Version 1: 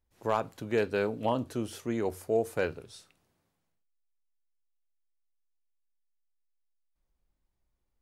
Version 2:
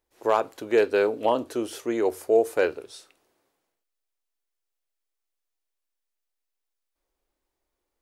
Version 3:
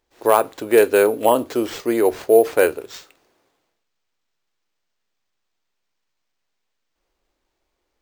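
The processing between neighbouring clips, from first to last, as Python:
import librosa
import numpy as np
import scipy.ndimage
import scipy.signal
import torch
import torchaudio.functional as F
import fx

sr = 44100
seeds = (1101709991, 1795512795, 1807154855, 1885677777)

y1 = fx.low_shelf_res(x, sr, hz=240.0, db=-12.5, q=1.5)
y1 = y1 * 10.0 ** (5.5 / 20.0)
y2 = np.repeat(y1[::4], 4)[:len(y1)]
y2 = y2 * 10.0 ** (7.0 / 20.0)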